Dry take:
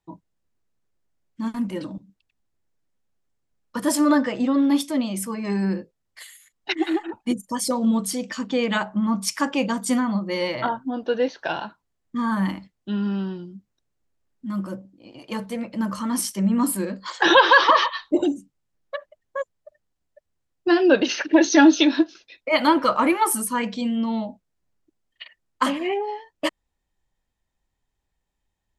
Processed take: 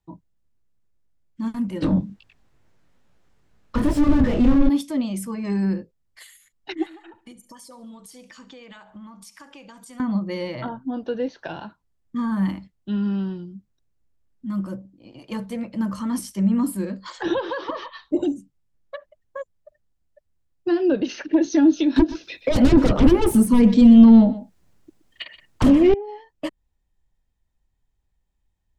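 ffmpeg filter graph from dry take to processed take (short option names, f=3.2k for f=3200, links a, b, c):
-filter_complex "[0:a]asettb=1/sr,asplit=3[a][b][c];[a]atrim=end=1.824[d];[b]atrim=start=1.82:end=4.69,asetpts=PTS-STARTPTS,afade=t=in:d=0.004:c=qsin,afade=t=out:st=2.866:d=0.004:c=qsin,flanger=delay=17.5:depth=6.1:speed=2.3,asplit=2[e][f];[f]highpass=f=720:p=1,volume=33dB,asoftclip=type=tanh:threshold=-11dB[g];[e][g]amix=inputs=2:normalize=0,lowpass=f=2.2k:p=1,volume=-6dB,lowshelf=f=140:g=12[h];[c]atrim=start=4.686[i];[d][h]acrossfade=d=0.004:c1=hsin:c2=qsin[j];[j][i]acrossfade=d=0.004:c1=qsin:c2=hsin,asettb=1/sr,asplit=3[k][l][m];[k]atrim=end=6.864[n];[l]atrim=start=6.86:end=10,asetpts=PTS-STARTPTS,afade=t=in:d=0.004:c=qsin,afade=t=out:st=3.136:d=0.004:c=qsin,equalizer=f=160:t=o:w=2.6:g=-12.5,acompressor=threshold=-39dB:ratio=8:attack=3.2:release=140:knee=1:detection=peak,aecho=1:1:70|140|210|280:0.133|0.0573|0.0247|0.0106,atrim=end_sample=138474[o];[m]atrim=start=9.996[p];[n][o]acrossfade=d=0.004:c1=hsin:c2=qsin[q];[q][p]acrossfade=d=0.004:c1=qsin:c2=hsin,asettb=1/sr,asplit=3[r][s][t];[r]atrim=end=21.964[u];[s]atrim=start=21.96:end=25.94,asetpts=PTS-STARTPTS,afade=t=in:d=0.004:c=qsin,afade=t=out:st=3.976:d=0.004:c=qsin,lowshelf=f=91:g=-12,aeval=exprs='0.501*sin(PI/2*5.01*val(0)/0.501)':c=same,aecho=1:1:123:0.141,atrim=end_sample=175518[v];[t]atrim=start=25.936[w];[u][v]acrossfade=d=0.004:c1=hsin:c2=qsin[x];[x][w]acrossfade=d=0.004:c1=qsin:c2=hsin,lowshelf=f=170:g=11.5,acrossover=split=500[y][z];[z]acompressor=threshold=-29dB:ratio=6[aa];[y][aa]amix=inputs=2:normalize=0,volume=-3.5dB"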